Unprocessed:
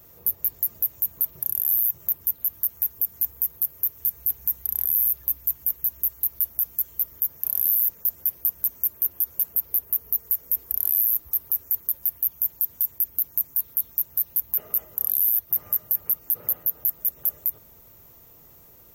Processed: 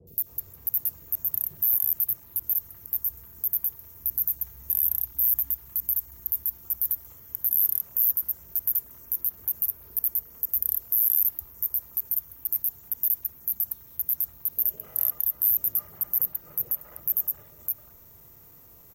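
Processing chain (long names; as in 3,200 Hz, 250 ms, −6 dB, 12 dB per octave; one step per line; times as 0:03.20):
slices reordered back to front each 155 ms, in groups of 2
three-band delay without the direct sound lows, highs, mids 70/260 ms, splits 550/3,100 Hz
harmonic and percussive parts rebalanced percussive −6 dB
level +2 dB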